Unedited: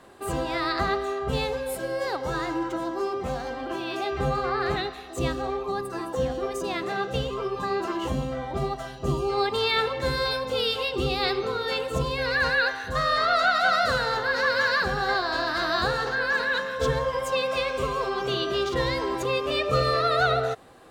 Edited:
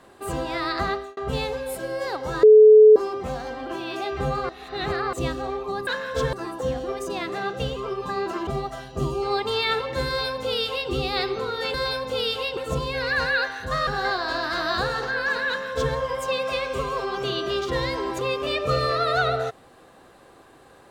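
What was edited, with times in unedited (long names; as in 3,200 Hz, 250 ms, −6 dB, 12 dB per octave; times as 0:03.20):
0:00.90–0:01.17: fade out
0:02.43–0:02.96: beep over 430 Hz −7 dBFS
0:04.49–0:05.13: reverse
0:08.01–0:08.54: remove
0:10.14–0:10.97: duplicate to 0:11.81
0:13.11–0:14.91: remove
0:16.52–0:16.98: duplicate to 0:05.87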